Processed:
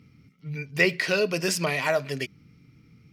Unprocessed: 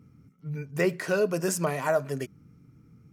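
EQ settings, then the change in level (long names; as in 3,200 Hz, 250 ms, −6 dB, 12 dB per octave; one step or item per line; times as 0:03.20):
flat-topped bell 3,200 Hz +13 dB
0.0 dB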